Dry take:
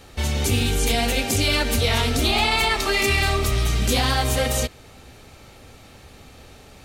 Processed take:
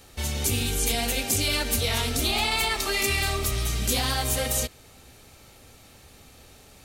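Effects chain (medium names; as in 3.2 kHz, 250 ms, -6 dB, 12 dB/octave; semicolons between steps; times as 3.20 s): treble shelf 6.1 kHz +11 dB; trim -6.5 dB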